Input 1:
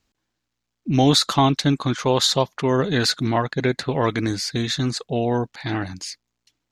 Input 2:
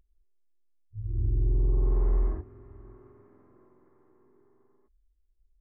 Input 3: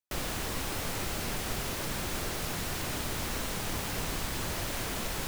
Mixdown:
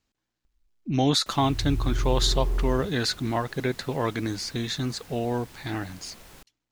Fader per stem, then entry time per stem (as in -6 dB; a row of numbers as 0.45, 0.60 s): -6.0, -1.5, -14.5 dB; 0.00, 0.45, 1.15 s